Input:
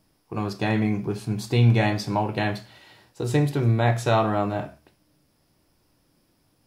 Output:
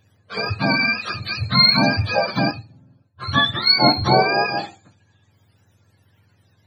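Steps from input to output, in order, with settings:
frequency axis turned over on the octave scale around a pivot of 710 Hz
0:02.51–0:04.02: multiband upward and downward expander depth 70%
level +6.5 dB

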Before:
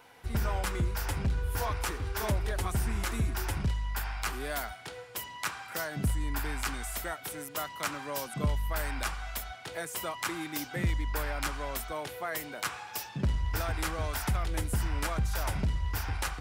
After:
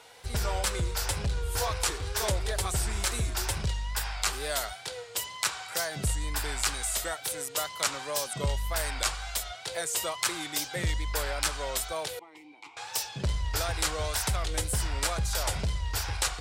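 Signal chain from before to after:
graphic EQ with 10 bands 250 Hz −8 dB, 500 Hz +6 dB, 4,000 Hz +8 dB, 8,000 Hz +10 dB
tape wow and flutter 74 cents
0:12.19–0:12.77: formant filter u

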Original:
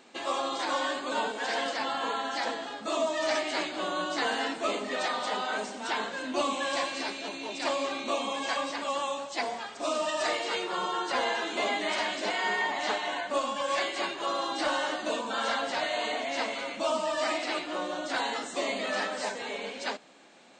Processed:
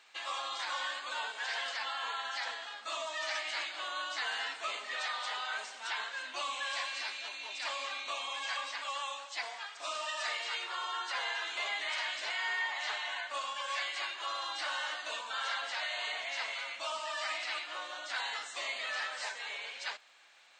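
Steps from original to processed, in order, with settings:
high-pass filter 1,400 Hz 12 dB per octave
high-shelf EQ 7,400 Hz −11 dB
in parallel at +0.5 dB: brickwall limiter −29 dBFS, peak gain reduction 7 dB
on the sum: surface crackle 200 per second −61 dBFS
level −6 dB

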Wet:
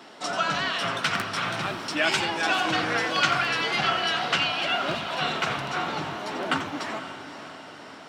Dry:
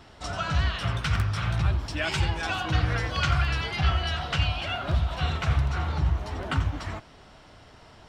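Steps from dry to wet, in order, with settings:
high-pass filter 210 Hz 24 dB per octave
on a send: feedback delay with all-pass diffusion 539 ms, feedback 53%, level −11 dB
on the sum: level +5.5 dB

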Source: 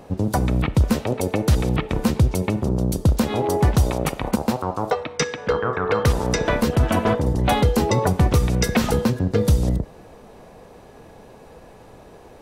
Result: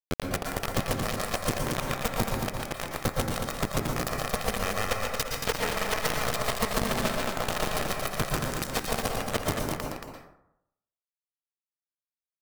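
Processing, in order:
lower of the sound and its delayed copy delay 1.6 ms
0:05.30–0:07.72: comb filter 4.7 ms, depth 89%
downward compressor 4 to 1, threshold −36 dBFS, peak gain reduction 19.5 dB
asymmetric clip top −31 dBFS
bit reduction 5 bits
tape wow and flutter 25 cents
single-tap delay 227 ms −5.5 dB
dense smooth reverb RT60 0.79 s, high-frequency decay 0.45×, pre-delay 105 ms, DRR 0.5 dB
level +6 dB

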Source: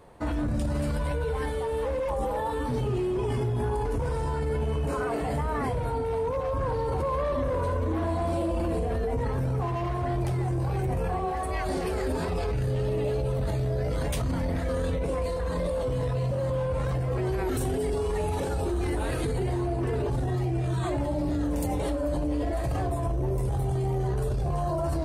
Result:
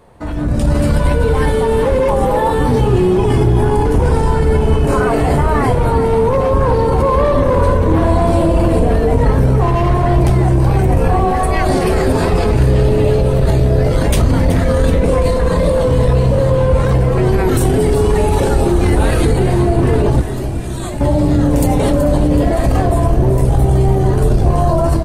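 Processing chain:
sub-octave generator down 1 octave, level −2 dB
0:20.21–0:21.01: first-order pre-emphasis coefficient 0.8
in parallel at −2.5 dB: brickwall limiter −24 dBFS, peak gain reduction 7.5 dB
on the sum: automatic gain control gain up to 11.5 dB
on a send: echo with shifted repeats 376 ms, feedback 59%, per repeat −35 Hz, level −11 dB

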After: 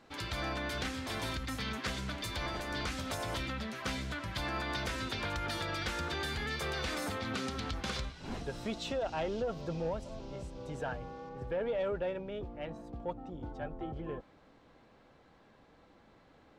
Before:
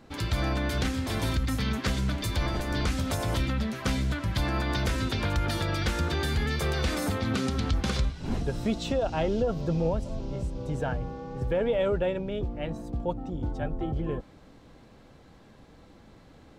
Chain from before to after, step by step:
mid-hump overdrive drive 10 dB, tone 6,200 Hz, clips at −17 dBFS, from 0:11.29 tone 2,100 Hz
level −8 dB

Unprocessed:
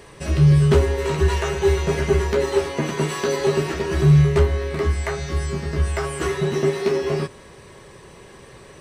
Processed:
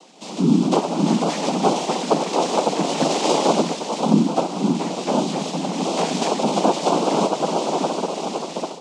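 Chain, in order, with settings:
drawn EQ curve 780 Hz 0 dB, 2,200 Hz −18 dB, 3,300 Hz +8 dB
feedback delay with all-pass diffusion 620 ms, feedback 44%, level −5 dB
cochlear-implant simulation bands 4
automatic gain control gain up to 12 dB
Butterworth high-pass 160 Hz 72 dB per octave
high-frequency loss of the air 60 metres
level −2.5 dB

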